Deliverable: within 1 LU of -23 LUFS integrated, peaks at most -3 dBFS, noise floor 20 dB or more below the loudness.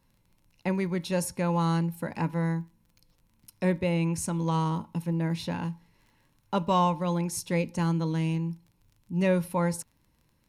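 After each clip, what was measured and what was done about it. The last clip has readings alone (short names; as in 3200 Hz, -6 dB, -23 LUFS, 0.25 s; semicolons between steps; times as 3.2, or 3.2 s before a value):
ticks 28/s; loudness -29.0 LUFS; peak -14.0 dBFS; loudness target -23.0 LUFS
-> de-click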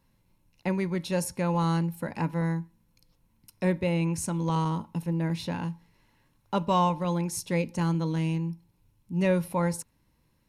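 ticks 0/s; loudness -29.0 LUFS; peak -14.0 dBFS; loudness target -23.0 LUFS
-> gain +6 dB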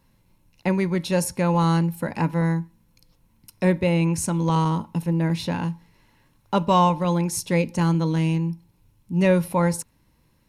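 loudness -23.0 LUFS; peak -8.0 dBFS; noise floor -63 dBFS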